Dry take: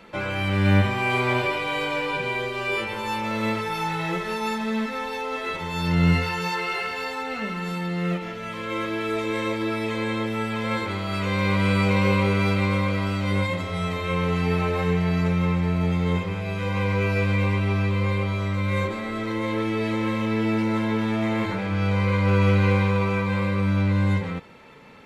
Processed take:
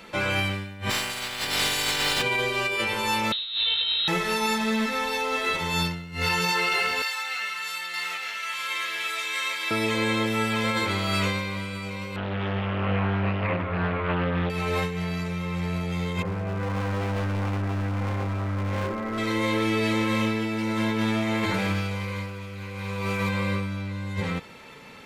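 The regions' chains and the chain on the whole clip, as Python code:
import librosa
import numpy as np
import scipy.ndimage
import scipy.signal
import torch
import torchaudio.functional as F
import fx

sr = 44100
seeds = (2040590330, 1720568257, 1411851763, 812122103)

y = fx.spec_clip(x, sr, under_db=25, at=(0.89, 2.21), fade=0.02)
y = fx.quant_companded(y, sr, bits=6, at=(0.89, 2.21), fade=0.02)
y = fx.chain(y, sr, fx.median_filter(points=25),
    fx.freq_invert(carrier_hz=4000), at=(3.32, 4.08))
y = fx.chain(y, sr, fx.highpass(hz=1400.0, slope=12),
    fx.echo_single(ms=915, db=-5.0), at=(7.02, 9.71))
y = fx.chain(y, sr, fx.lowpass(hz=1900.0, slope=24),
    fx.doppler_dist(depth_ms=0.83), at=(12.16, 14.5))
y = fx.chain(y, sr, fx.lowpass(hz=1600.0, slope=24),
    fx.overload_stage(gain_db=26.0), at=(16.22, 19.18))
y = fx.chain(y, sr, fx.high_shelf(hz=8700.0, db=11.5),
    fx.doppler_dist(depth_ms=0.1), at=(21.54, 23.29))
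y = fx.high_shelf(y, sr, hz=2800.0, db=10.0)
y = fx.over_compress(y, sr, threshold_db=-24.0, ratio=-0.5)
y = y * librosa.db_to_amplitude(-1.5)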